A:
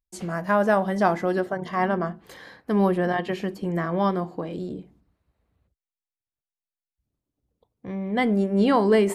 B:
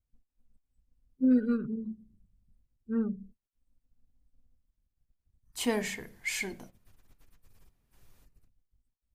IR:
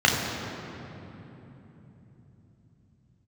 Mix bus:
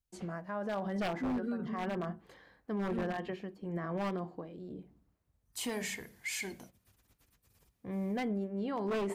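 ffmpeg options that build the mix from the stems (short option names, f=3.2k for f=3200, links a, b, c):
-filter_complex "[0:a]lowpass=f=1.7k:p=1,tremolo=f=0.99:d=0.7,volume=-5dB[a];[1:a]highpass=f=47:w=0.5412,highpass=f=47:w=1.3066,volume=-3.5dB[b];[a][b]amix=inputs=2:normalize=0,highshelf=f=2.5k:g=5,aeval=exprs='0.075*(abs(mod(val(0)/0.075+3,4)-2)-1)':c=same,alimiter=level_in=4.5dB:limit=-24dB:level=0:latency=1:release=43,volume=-4.5dB"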